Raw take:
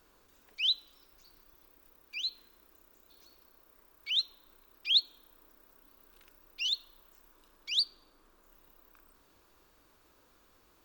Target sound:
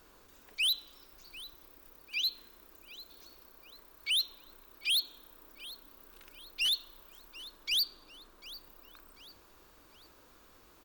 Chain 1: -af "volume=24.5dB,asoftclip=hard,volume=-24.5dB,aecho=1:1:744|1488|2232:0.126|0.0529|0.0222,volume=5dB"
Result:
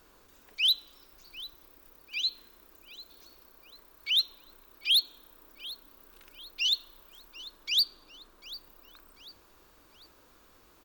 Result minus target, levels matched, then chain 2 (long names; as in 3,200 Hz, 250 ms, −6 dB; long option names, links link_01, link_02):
gain into a clipping stage and back: distortion −6 dB
-af "volume=31.5dB,asoftclip=hard,volume=-31.5dB,aecho=1:1:744|1488|2232:0.126|0.0529|0.0222,volume=5dB"